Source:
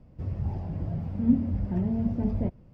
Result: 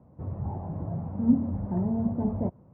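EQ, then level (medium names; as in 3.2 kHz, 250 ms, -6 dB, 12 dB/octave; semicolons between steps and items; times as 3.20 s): high-pass 90 Hz; resonant low-pass 1 kHz, resonance Q 2; 0.0 dB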